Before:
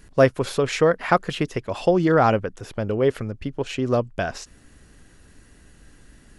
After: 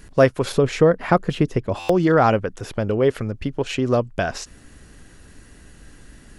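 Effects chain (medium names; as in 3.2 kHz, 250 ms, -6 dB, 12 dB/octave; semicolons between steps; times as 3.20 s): 0.52–1.89 s: tilt shelf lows +5.5 dB, about 640 Hz; in parallel at -2.5 dB: compression, threshold -27 dBFS, peak gain reduction 16 dB; on the sum: buffer glitch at 1.79 s, samples 512, times 8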